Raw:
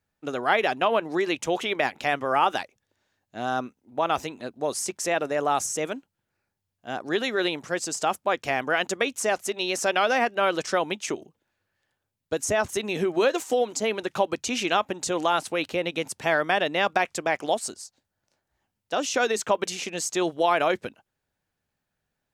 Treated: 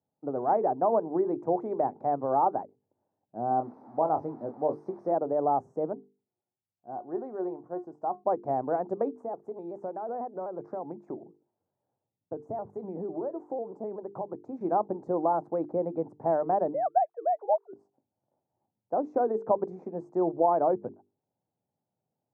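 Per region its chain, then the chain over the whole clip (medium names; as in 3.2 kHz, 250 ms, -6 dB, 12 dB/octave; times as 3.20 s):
3.48–5.12 s: zero-crossing glitches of -18 dBFS + Savitzky-Golay filter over 15 samples + doubling 26 ms -8 dB
5.94–8.24 s: dynamic bell 1 kHz, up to +6 dB, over -39 dBFS, Q 1 + feedback comb 360 Hz, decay 0.2 s, mix 70%
9.21–14.61 s: compression 2.5:1, threshold -33 dBFS + vibrato with a chosen wave square 4 Hz, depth 100 cents
16.74–17.73 s: formants replaced by sine waves + high-pass 450 Hz
whole clip: elliptic band-pass 110–860 Hz, stop band 50 dB; hum notches 50/100/150/200/250/300/350/400/450 Hz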